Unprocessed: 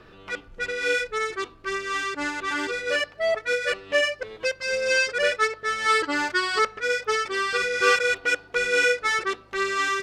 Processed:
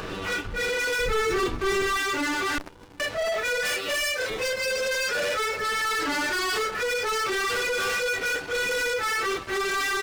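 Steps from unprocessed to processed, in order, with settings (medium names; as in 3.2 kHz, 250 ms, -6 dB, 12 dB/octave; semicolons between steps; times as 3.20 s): phase randomisation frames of 100 ms; upward compressor, threshold -43 dBFS; 3.65–4.30 s: RIAA curve recording; compression, threshold -23 dBFS, peak gain reduction 8.5 dB; waveshaping leveller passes 5; peak limiter -21 dBFS, peak gain reduction 6.5 dB; 0.99–1.97 s: bass shelf 340 Hz +10.5 dB; delay 355 ms -22 dB; 2.58–3.00 s: sliding maximum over 65 samples; trim -3 dB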